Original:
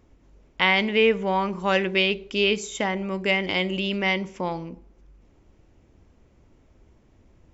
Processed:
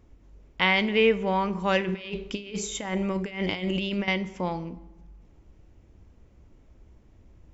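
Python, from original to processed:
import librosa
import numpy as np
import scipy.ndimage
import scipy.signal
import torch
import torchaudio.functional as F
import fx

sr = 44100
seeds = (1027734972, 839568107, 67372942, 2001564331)

y = fx.over_compress(x, sr, threshold_db=-28.0, ratio=-0.5, at=(1.81, 4.08))
y = fx.low_shelf(y, sr, hz=130.0, db=7.0)
y = fx.rev_fdn(y, sr, rt60_s=1.2, lf_ratio=1.35, hf_ratio=0.75, size_ms=98.0, drr_db=15.5)
y = y * 10.0 ** (-2.5 / 20.0)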